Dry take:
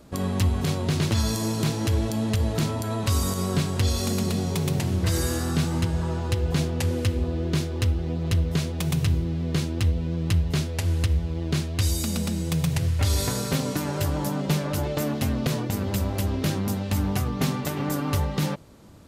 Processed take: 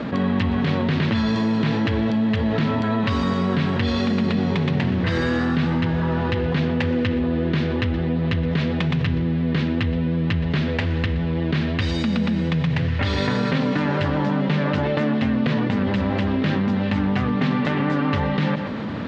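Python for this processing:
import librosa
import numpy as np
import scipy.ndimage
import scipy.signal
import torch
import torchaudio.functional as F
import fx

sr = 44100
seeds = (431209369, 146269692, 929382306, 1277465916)

y = fx.cabinet(x, sr, low_hz=140.0, low_slope=12, high_hz=3500.0, hz=(230.0, 350.0, 690.0, 1800.0), db=(6, -5, -3, 6))
y = y + 10.0 ** (-19.5 / 20.0) * np.pad(y, (int(121 * sr / 1000.0), 0))[:len(y)]
y = fx.env_flatten(y, sr, amount_pct=70)
y = y * librosa.db_to_amplitude(1.5)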